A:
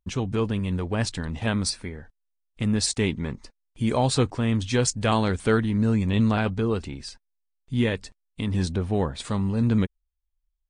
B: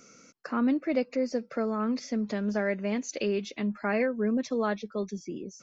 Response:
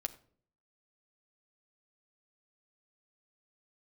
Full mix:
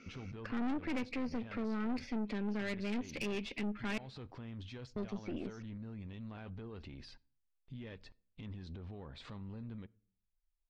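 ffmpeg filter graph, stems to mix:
-filter_complex "[0:a]acompressor=threshold=-30dB:ratio=6,alimiter=level_in=9.5dB:limit=-24dB:level=0:latency=1:release=21,volume=-9.5dB,volume=-6.5dB,asplit=2[a][b];[b]volume=-7.5dB[c];[1:a]equalizer=f=250:t=o:w=0.67:g=7,equalizer=f=630:t=o:w=0.67:g=-4,equalizer=f=2.5k:t=o:w=0.67:g=11,volume=-2.5dB,asplit=3[d][e][f];[d]atrim=end=3.98,asetpts=PTS-STARTPTS,afade=t=out:st=3.976:d=0.004:c=hsin[g];[e]atrim=start=3.98:end=4.96,asetpts=PTS-STARTPTS,volume=0[h];[f]atrim=start=4.96,asetpts=PTS-STARTPTS,afade=t=in:d=0.004:c=hsin[i];[g][h][i]concat=n=3:v=0:a=1,asplit=2[j][k];[k]volume=-12dB[l];[2:a]atrim=start_sample=2205[m];[c][l]amix=inputs=2:normalize=0[n];[n][m]afir=irnorm=-1:irlink=0[o];[a][j][o]amix=inputs=3:normalize=0,lowpass=f=4.5k:w=0.5412,lowpass=f=4.5k:w=1.3066,aeval=exprs='(tanh(28.2*val(0)+0.65)-tanh(0.65))/28.2':c=same,alimiter=level_in=6dB:limit=-24dB:level=0:latency=1:release=202,volume=-6dB"

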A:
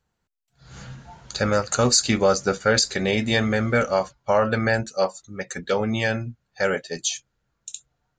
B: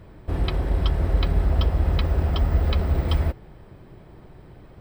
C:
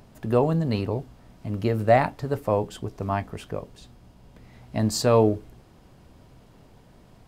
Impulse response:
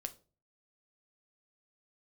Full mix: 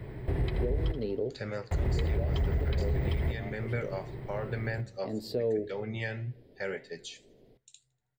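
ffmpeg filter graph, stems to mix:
-filter_complex "[0:a]alimiter=limit=-11.5dB:level=0:latency=1:release=440,flanger=delay=7.2:depth=5.2:regen=85:speed=1.9:shape=triangular,volume=-13dB,asplit=4[a][b][c][d];[b]volume=-5dB[e];[c]volume=-23dB[f];[1:a]asoftclip=type=tanh:threshold=-13dB,volume=1dB,asplit=3[g][h][i];[g]atrim=end=0.92,asetpts=PTS-STARTPTS,afade=t=out:st=0.916:d=0.004:c=hsin[j];[h]atrim=start=0.92:end=1.71,asetpts=PTS-STARTPTS,volume=0[k];[i]atrim=start=1.71,asetpts=PTS-STARTPTS,afade=t=in:d=0.004:c=hsin[l];[j][k][l]concat=n=3:v=0:a=1,asplit=2[m][n];[n]volume=-14.5dB[o];[2:a]equalizer=f=125:t=o:w=1:g=-11,equalizer=f=250:t=o:w=1:g=5,equalizer=f=500:t=o:w=1:g=11,equalizer=f=1k:t=o:w=1:g=-12,equalizer=f=2k:t=o:w=1:g=-7,equalizer=f=4k:t=o:w=1:g=5,equalizer=f=8k:t=o:w=1:g=-11,adelay=300,volume=-12dB,asplit=2[p][q];[q]volume=-9dB[r];[d]apad=whole_len=333961[s];[p][s]sidechaincompress=threshold=-42dB:ratio=8:attack=5.7:release=453[t];[3:a]atrim=start_sample=2205[u];[e][r]amix=inputs=2:normalize=0[v];[v][u]afir=irnorm=-1:irlink=0[w];[f][o]amix=inputs=2:normalize=0,aecho=0:1:80|160|240|320|400|480|560:1|0.48|0.23|0.111|0.0531|0.0255|0.0122[x];[a][m][t][w][x]amix=inputs=5:normalize=0,equalizer=f=125:t=o:w=0.33:g=11,equalizer=f=400:t=o:w=0.33:g=8,equalizer=f=1.25k:t=o:w=0.33:g=-6,equalizer=f=2k:t=o:w=0.33:g=9,equalizer=f=6.3k:t=o:w=0.33:g=-11,acrossover=split=220[y][z];[z]acompressor=threshold=-28dB:ratio=2[aa];[y][aa]amix=inputs=2:normalize=0,alimiter=limit=-21dB:level=0:latency=1:release=388"

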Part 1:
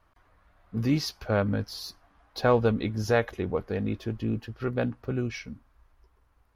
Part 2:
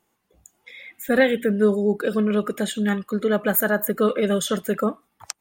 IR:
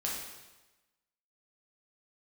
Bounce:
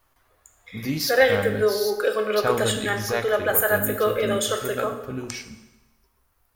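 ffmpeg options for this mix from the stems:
-filter_complex "[0:a]aemphasis=mode=production:type=75fm,flanger=delay=7.4:depth=6.4:regen=70:speed=0.33:shape=sinusoidal,volume=1dB,asplit=2[a][b];[b]volume=-10.5dB[c];[1:a]highpass=f=410:w=0.5412,highpass=f=410:w=1.3066,dynaudnorm=f=170:g=9:m=10dB,volume=-8dB,asplit=2[d][e];[e]volume=-4.5dB[f];[2:a]atrim=start_sample=2205[g];[c][f]amix=inputs=2:normalize=0[h];[h][g]afir=irnorm=-1:irlink=0[i];[a][d][i]amix=inputs=3:normalize=0,bandreject=f=60:t=h:w=6,bandreject=f=120:t=h:w=6,bandreject=f=180:t=h:w=6,bandreject=f=240:t=h:w=6,bandreject=f=300:t=h:w=6,bandreject=f=360:t=h:w=6,bandreject=f=420:t=h:w=6"

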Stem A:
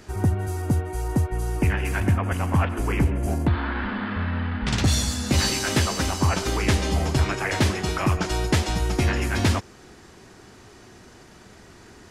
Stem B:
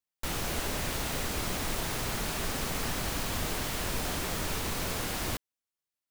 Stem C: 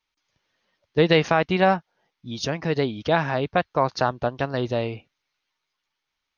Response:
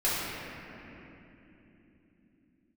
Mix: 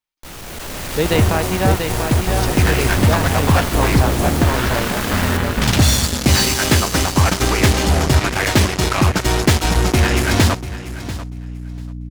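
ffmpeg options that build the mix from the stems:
-filter_complex "[0:a]acrusher=bits=3:mix=0:aa=0.5,aeval=exprs='val(0)+0.0178*(sin(2*PI*60*n/s)+sin(2*PI*2*60*n/s)/2+sin(2*PI*3*60*n/s)/3+sin(2*PI*4*60*n/s)/4+sin(2*PI*5*60*n/s)/5)':c=same,adelay=950,volume=-2.5dB,asplit=2[a][b];[b]volume=-15.5dB[c];[1:a]volume=32dB,asoftclip=hard,volume=-32dB,volume=0dB,asplit=2[d][e];[e]volume=-4.5dB[f];[2:a]volume=-9.5dB,asplit=2[g][h];[h]volume=-5dB[i];[c][f][i]amix=inputs=3:normalize=0,aecho=0:1:690|1380|2070:1|0.15|0.0225[j];[a][d][g][j]amix=inputs=4:normalize=0,dynaudnorm=f=140:g=9:m=11dB"

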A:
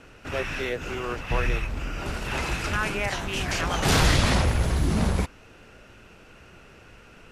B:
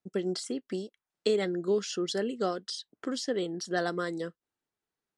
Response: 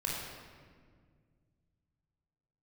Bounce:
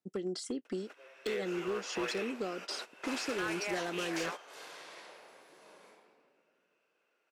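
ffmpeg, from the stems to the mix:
-filter_complex "[0:a]highpass=f=380:w=0.5412,highpass=f=380:w=1.3066,adelay=650,volume=-9.5dB,asplit=2[a][b];[b]volume=-21dB[c];[1:a]highpass=97,equalizer=f=310:t=o:w=1.1:g=3.5,acompressor=threshold=-29dB:ratio=10,volume=-3dB,asplit=2[d][e];[e]apad=whole_len=351276[f];[a][f]sidechaingate=range=-33dB:threshold=-46dB:ratio=16:detection=peak[g];[2:a]atrim=start_sample=2205[h];[c][h]afir=irnorm=-1:irlink=0[i];[g][d][i]amix=inputs=3:normalize=0,asoftclip=type=hard:threshold=-29dB"

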